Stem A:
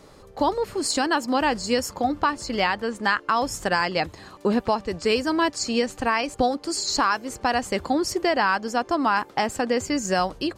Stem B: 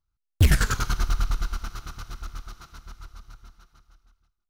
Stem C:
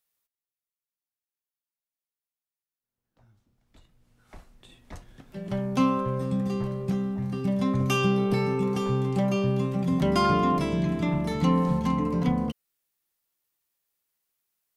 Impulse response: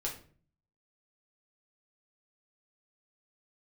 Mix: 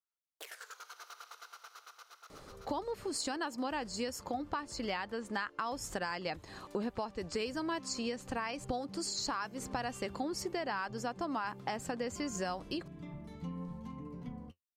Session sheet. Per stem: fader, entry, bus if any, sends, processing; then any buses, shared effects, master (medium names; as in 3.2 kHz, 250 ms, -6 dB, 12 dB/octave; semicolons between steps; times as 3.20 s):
-4.0 dB, 2.30 s, no send, none
-10.5 dB, 0.00 s, no send, elliptic high-pass 460 Hz, stop band 60 dB; compression 10:1, threshold -35 dBFS, peak gain reduction 12.5 dB
-18.5 dB, 2.00 s, no send, bass shelf 120 Hz +12 dB; flange 0.91 Hz, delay 6.5 ms, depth 5.8 ms, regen +46%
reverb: none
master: compression 3:1, threshold -37 dBFS, peak gain reduction 12 dB